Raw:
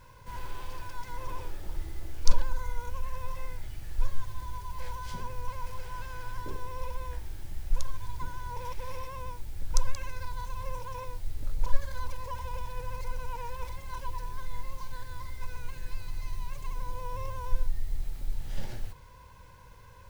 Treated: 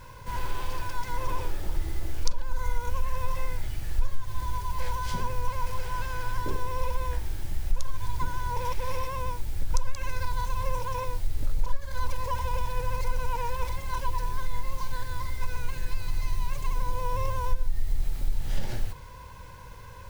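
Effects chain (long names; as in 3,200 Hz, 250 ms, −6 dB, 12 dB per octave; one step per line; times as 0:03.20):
downward compressor 5 to 1, threshold −25 dBFS, peak gain reduction 16 dB
level +7.5 dB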